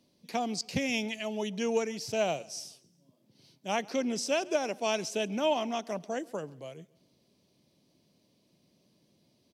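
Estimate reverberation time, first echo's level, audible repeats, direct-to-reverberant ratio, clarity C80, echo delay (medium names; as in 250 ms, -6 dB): no reverb, -24.0 dB, 2, no reverb, no reverb, 137 ms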